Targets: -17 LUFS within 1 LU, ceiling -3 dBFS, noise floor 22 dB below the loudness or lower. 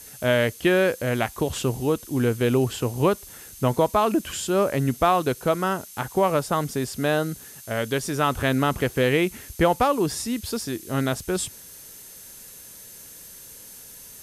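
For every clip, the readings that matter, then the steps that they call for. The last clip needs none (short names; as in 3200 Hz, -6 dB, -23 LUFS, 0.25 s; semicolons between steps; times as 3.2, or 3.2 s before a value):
steady tone 6300 Hz; tone level -53 dBFS; noise floor -44 dBFS; noise floor target -46 dBFS; loudness -24.0 LUFS; peak -7.5 dBFS; loudness target -17.0 LUFS
-> notch 6300 Hz, Q 30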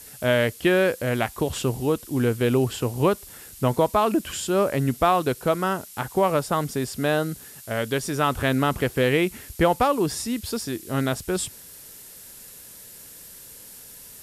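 steady tone none; noise floor -45 dBFS; noise floor target -46 dBFS
-> denoiser 6 dB, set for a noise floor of -45 dBFS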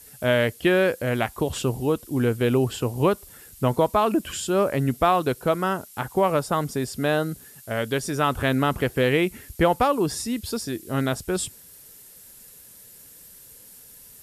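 noise floor -48 dBFS; loudness -24.0 LUFS; peak -7.5 dBFS; loudness target -17.0 LUFS
-> gain +7 dB; limiter -3 dBFS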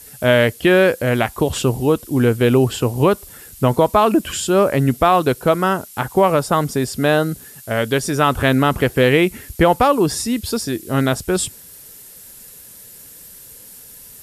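loudness -17.0 LUFS; peak -3.0 dBFS; noise floor -41 dBFS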